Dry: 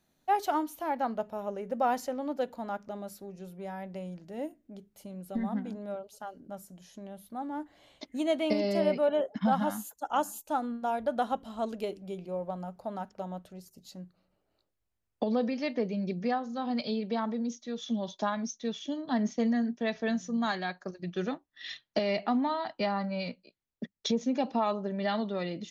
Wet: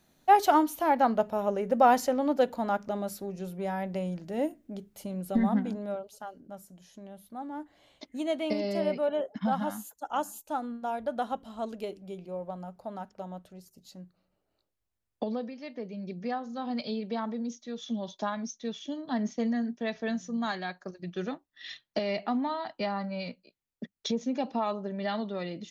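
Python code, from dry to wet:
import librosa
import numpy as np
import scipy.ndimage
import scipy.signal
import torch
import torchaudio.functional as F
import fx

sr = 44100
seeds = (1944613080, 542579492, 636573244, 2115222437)

y = fx.gain(x, sr, db=fx.line((5.47, 7.0), (6.49, -2.0), (15.25, -2.0), (15.55, -10.5), (16.48, -1.5)))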